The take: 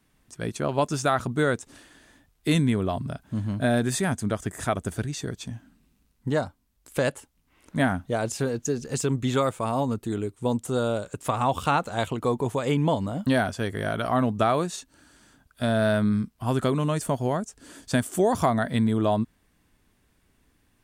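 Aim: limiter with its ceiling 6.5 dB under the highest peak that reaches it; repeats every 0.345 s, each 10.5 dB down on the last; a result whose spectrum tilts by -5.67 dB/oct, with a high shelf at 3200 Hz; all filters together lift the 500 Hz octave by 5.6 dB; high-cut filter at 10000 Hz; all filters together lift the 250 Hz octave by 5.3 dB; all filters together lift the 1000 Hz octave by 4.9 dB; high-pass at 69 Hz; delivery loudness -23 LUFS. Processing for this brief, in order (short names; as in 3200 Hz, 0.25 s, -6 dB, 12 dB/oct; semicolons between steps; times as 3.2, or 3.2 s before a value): HPF 69 Hz; LPF 10000 Hz; bell 250 Hz +5 dB; bell 500 Hz +4.5 dB; bell 1000 Hz +4 dB; high shelf 3200 Hz +6 dB; limiter -9.5 dBFS; feedback echo 0.345 s, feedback 30%, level -10.5 dB; gain -0.5 dB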